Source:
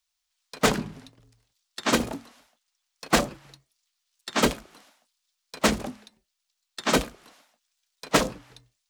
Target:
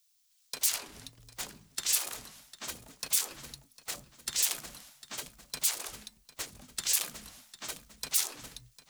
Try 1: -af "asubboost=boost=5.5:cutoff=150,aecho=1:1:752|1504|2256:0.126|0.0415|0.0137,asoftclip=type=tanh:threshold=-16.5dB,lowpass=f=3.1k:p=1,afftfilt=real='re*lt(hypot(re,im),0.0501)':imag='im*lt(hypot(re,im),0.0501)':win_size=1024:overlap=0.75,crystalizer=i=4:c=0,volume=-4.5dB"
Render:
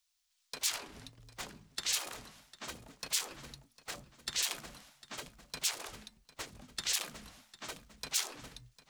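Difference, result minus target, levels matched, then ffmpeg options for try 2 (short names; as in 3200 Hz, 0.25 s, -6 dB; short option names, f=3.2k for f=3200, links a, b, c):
4000 Hz band +4.0 dB
-af "asubboost=boost=5.5:cutoff=150,aecho=1:1:752|1504|2256:0.126|0.0415|0.0137,asoftclip=type=tanh:threshold=-16.5dB,afftfilt=real='re*lt(hypot(re,im),0.0501)':imag='im*lt(hypot(re,im),0.0501)':win_size=1024:overlap=0.75,crystalizer=i=4:c=0,volume=-4.5dB"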